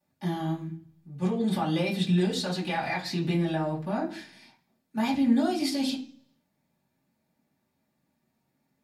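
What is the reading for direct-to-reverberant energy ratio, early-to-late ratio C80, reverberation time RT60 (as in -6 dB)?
-8.0 dB, 15.5 dB, 0.50 s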